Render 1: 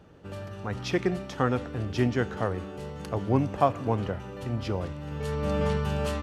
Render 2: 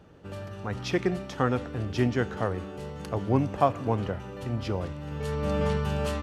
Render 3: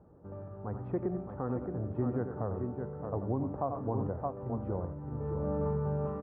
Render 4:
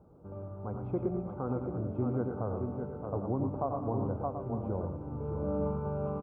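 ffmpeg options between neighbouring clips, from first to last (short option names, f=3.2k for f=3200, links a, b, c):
-af anull
-filter_complex "[0:a]lowpass=f=1.1k:w=0.5412,lowpass=f=1.1k:w=1.3066,asplit=2[a][b];[b]aecho=0:1:89|618:0.299|0.398[c];[a][c]amix=inputs=2:normalize=0,alimiter=limit=-17.5dB:level=0:latency=1:release=124,volume=-5dB"
-filter_complex "[0:a]asuperstop=centerf=1800:order=4:qfactor=3.4,asplit=2[a][b];[b]aecho=0:1:112|308:0.447|0.2[c];[a][c]amix=inputs=2:normalize=0"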